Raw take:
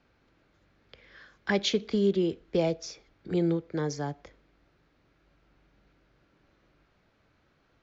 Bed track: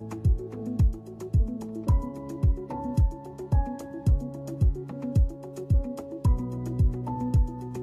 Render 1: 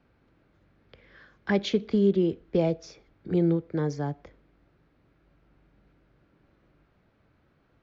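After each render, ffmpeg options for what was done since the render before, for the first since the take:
ffmpeg -i in.wav -af "lowpass=frequency=2500:poles=1,equalizer=frequency=130:width=0.39:gain=4.5" out.wav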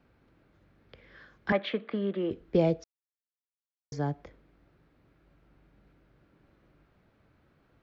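ffmpeg -i in.wav -filter_complex "[0:a]asettb=1/sr,asplit=3[link_01][link_02][link_03];[link_01]atrim=end=1.524[link_04];[link_02]atrim=start=1.52:end=2.31,asetpts=PTS-STARTPTS,afade=type=in:duration=0.004:curve=qsin,afade=type=out:start_time=0.786:duration=0.004:curve=qsin,highpass=330,equalizer=frequency=400:width_type=q:width=4:gain=-9,equalizer=frequency=570:width_type=q:width=4:gain=5,equalizer=frequency=1200:width_type=q:width=4:gain=8,equalizer=frequency=1800:width_type=q:width=4:gain=7,lowpass=frequency=3100:width=0.5412,lowpass=frequency=3100:width=1.3066[link_05];[link_03]atrim=start=2.306[link_06];[link_04][link_05]acrossfade=duration=0.004:curve1=hsin:curve2=qsin[link_07];[link_07][link_06]acrossfade=duration=0.004:curve1=qsin:curve2=hsin,asplit=3[link_08][link_09][link_10];[link_08]atrim=end=2.84,asetpts=PTS-STARTPTS,afade=type=out:start_time=2.836:duration=0.004:curve=hsin[link_11];[link_09]atrim=start=2.84:end=3.92,asetpts=PTS-STARTPTS,volume=0[link_12];[link_10]atrim=start=3.92,asetpts=PTS-STARTPTS,afade=type=in:duration=0.004:curve=hsin[link_13];[link_11][link_12][link_13]concat=n=3:v=0:a=1" out.wav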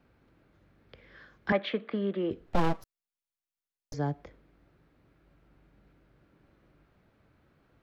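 ffmpeg -i in.wav -filter_complex "[0:a]asettb=1/sr,asplit=3[link_01][link_02][link_03];[link_01]atrim=end=2.464[link_04];[link_02]atrim=start=2.46:end=3.94,asetpts=PTS-STARTPTS,afade=type=in:duration=0.004:curve=qsin,afade=type=out:start_time=1.476:duration=0.004:curve=qsin,aeval=exprs='abs(val(0))':channel_layout=same[link_05];[link_03]atrim=start=3.936[link_06];[link_04][link_05]acrossfade=duration=0.004:curve1=hsin:curve2=qsin[link_07];[link_07][link_06]acrossfade=duration=0.004:curve1=qsin:curve2=hsin" out.wav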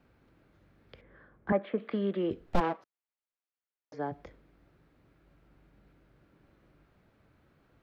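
ffmpeg -i in.wav -filter_complex "[0:a]asettb=1/sr,asplit=3[link_01][link_02][link_03];[link_01]atrim=end=1.014[link_04];[link_02]atrim=start=1.01:end=1.78,asetpts=PTS-STARTPTS,afade=type=in:duration=0.004:curve=qsin,afade=type=out:start_time=0.766:duration=0.004:curve=qsin,lowpass=1200[link_05];[link_03]atrim=start=1.776[link_06];[link_04][link_05]acrossfade=duration=0.004:curve1=hsin:curve2=qsin[link_07];[link_07][link_06]acrossfade=duration=0.004:curve1=qsin:curve2=hsin,asplit=3[link_08][link_09][link_10];[link_08]afade=type=out:start_time=2.59:duration=0.02[link_11];[link_09]highpass=330,lowpass=2400,afade=type=in:start_time=2.59:duration=0.02,afade=type=out:start_time=4.11:duration=0.02[link_12];[link_10]afade=type=in:start_time=4.11:duration=0.02[link_13];[link_11][link_12][link_13]amix=inputs=3:normalize=0" out.wav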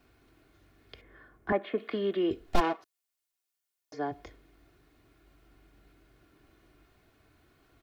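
ffmpeg -i in.wav -af "highshelf=frequency=3000:gain=10.5,aecho=1:1:2.8:0.52" out.wav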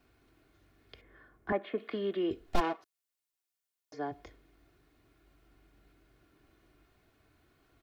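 ffmpeg -i in.wav -af "volume=-3.5dB" out.wav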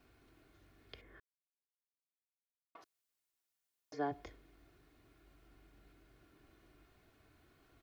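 ffmpeg -i in.wav -filter_complex "[0:a]asplit=3[link_01][link_02][link_03];[link_01]atrim=end=1.2,asetpts=PTS-STARTPTS,afade=type=out:start_time=1.196:duration=0.004:curve=hsin[link_04];[link_02]atrim=start=1.2:end=2.75,asetpts=PTS-STARTPTS,volume=0[link_05];[link_03]atrim=start=2.75,asetpts=PTS-STARTPTS,afade=type=in:duration=0.004:curve=hsin[link_06];[link_04][link_05][link_06]concat=n=3:v=0:a=1" out.wav

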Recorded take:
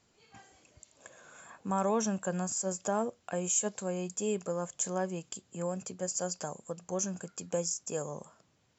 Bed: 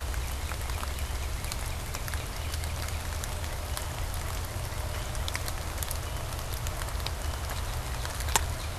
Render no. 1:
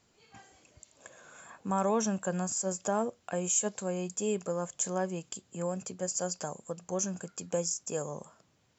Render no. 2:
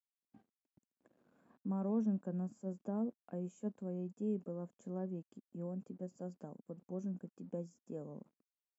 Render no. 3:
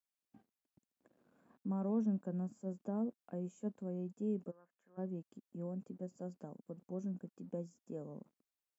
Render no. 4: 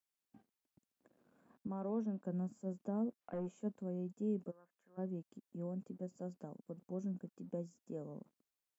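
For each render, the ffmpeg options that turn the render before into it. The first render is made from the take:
ffmpeg -i in.wav -af "volume=1dB" out.wav
ffmpeg -i in.wav -af "aeval=exprs='val(0)*gte(abs(val(0)),0.00282)':channel_layout=same,bandpass=frequency=240:width_type=q:width=2.4:csg=0" out.wav
ffmpeg -i in.wav -filter_complex "[0:a]asplit=3[link_01][link_02][link_03];[link_01]afade=type=out:start_time=4.5:duration=0.02[link_04];[link_02]bandpass=frequency=1700:width_type=q:width=2.9,afade=type=in:start_time=4.5:duration=0.02,afade=type=out:start_time=4.97:duration=0.02[link_05];[link_03]afade=type=in:start_time=4.97:duration=0.02[link_06];[link_04][link_05][link_06]amix=inputs=3:normalize=0" out.wav
ffmpeg -i in.wav -filter_complex "[0:a]asettb=1/sr,asplit=3[link_01][link_02][link_03];[link_01]atrim=end=1.674[link_04];[link_02]atrim=start=1.67:end=2.25,asetpts=PTS-STARTPTS,afade=type=in:duration=0.004:curve=qsin,afade=type=out:start_time=0.576:duration=0.004:curve=qsin,highpass=260,lowpass=5600[link_05];[link_03]atrim=start=2.246[link_06];[link_04][link_05]acrossfade=duration=0.004:curve1=hsin:curve2=qsin[link_07];[link_07][link_06]acrossfade=duration=0.004:curve1=qsin:curve2=hsin,asettb=1/sr,asplit=3[link_08][link_09][link_10];[link_08]atrim=end=3.214[link_11];[link_09]atrim=start=3.21:end=3.61,asetpts=PTS-STARTPTS,afade=type=in:duration=0.004:curve=qsin,afade=type=out:start_time=0.396:duration=0.004:curve=qsin,asplit=2[link_12][link_13];[link_13]highpass=frequency=720:poles=1,volume=17dB,asoftclip=type=tanh:threshold=-31.5dB[link_14];[link_12][link_14]amix=inputs=2:normalize=0,lowpass=frequency=1200:poles=1,volume=-6dB[link_15];[link_10]atrim=start=3.606[link_16];[link_11][link_15]acrossfade=duration=0.004:curve1=hsin:curve2=qsin[link_17];[link_17][link_16]acrossfade=duration=0.004:curve1=qsin:curve2=hsin" out.wav

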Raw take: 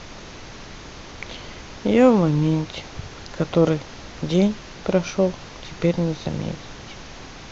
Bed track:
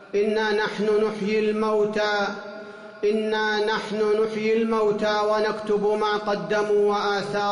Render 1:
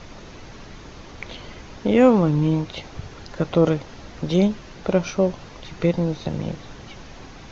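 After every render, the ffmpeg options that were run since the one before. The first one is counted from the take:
ffmpeg -i in.wav -af "afftdn=noise_reduction=6:noise_floor=-40" out.wav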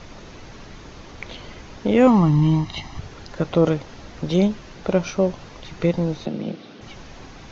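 ffmpeg -i in.wav -filter_complex "[0:a]asettb=1/sr,asplit=3[link_01][link_02][link_03];[link_01]atrim=end=2.074[link_04];[link_02]atrim=start=2.07:end=2.99,asetpts=PTS-STARTPTS,afade=type=in:duration=0.004:curve=qsin,afade=type=out:start_time=0.916:duration=0.004:curve=qsin,aecho=1:1:1:0.79,atrim=end_sample=40572[link_05];[link_03]atrim=start=2.986[link_06];[link_04][link_05]acrossfade=duration=0.004:curve1=hsin:curve2=qsin[link_07];[link_07][link_06]acrossfade=duration=0.004:curve1=qsin:curve2=hsin,asplit=3[link_08][link_09][link_10];[link_08]afade=type=out:start_time=6.25:duration=0.02[link_11];[link_09]highpass=frequency=140:width=0.5412,highpass=frequency=140:width=1.3066,equalizer=frequency=140:width_type=q:width=4:gain=-10,equalizer=frequency=220:width_type=q:width=4:gain=5,equalizer=frequency=340:width_type=q:width=4:gain=4,equalizer=frequency=970:width_type=q:width=4:gain=-9,equalizer=frequency=1800:width_type=q:width=4:gain=-6,lowpass=frequency=5000:width=0.5412,lowpass=frequency=5000:width=1.3066,afade=type=in:start_time=6.25:duration=0.02,afade=type=out:start_time=6.8:duration=0.02[link_12];[link_10]afade=type=in:start_time=6.8:duration=0.02[link_13];[link_11][link_12][link_13]amix=inputs=3:normalize=0" out.wav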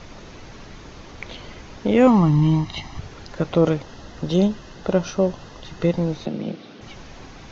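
ffmpeg -i in.wav -filter_complex "[0:a]asettb=1/sr,asplit=3[link_01][link_02][link_03];[link_01]atrim=end=3.824[link_04];[link_02]atrim=start=3.82:end=5.92,asetpts=PTS-STARTPTS,afade=type=in:duration=0.004:curve=qsin,afade=type=out:start_time=2.096:duration=0.004:curve=qsin,asuperstop=centerf=2300:order=4:qfactor=6.4[link_05];[link_03]atrim=start=5.916[link_06];[link_04][link_05]acrossfade=duration=0.004:curve1=hsin:curve2=qsin[link_07];[link_07][link_06]acrossfade=duration=0.004:curve1=qsin:curve2=hsin" out.wav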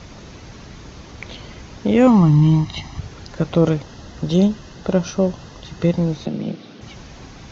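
ffmpeg -i in.wav -af "highpass=40,bass=frequency=250:gain=5,treble=frequency=4000:gain=4" out.wav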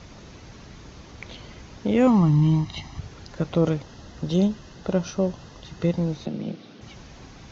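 ffmpeg -i in.wav -af "volume=-5.5dB" out.wav

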